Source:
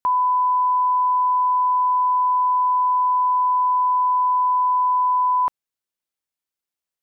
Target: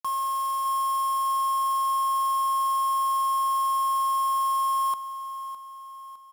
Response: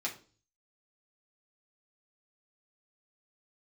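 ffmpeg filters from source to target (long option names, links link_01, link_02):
-af "acontrast=44,alimiter=limit=-18.5dB:level=0:latency=1,afreqshift=-31,acrusher=bits=4:mix=0:aa=0.000001,asetrate=48951,aresample=44100,aecho=1:1:609|1218|1827|2436|3045:0.237|0.109|0.0502|0.0231|0.0106,volume=-6.5dB"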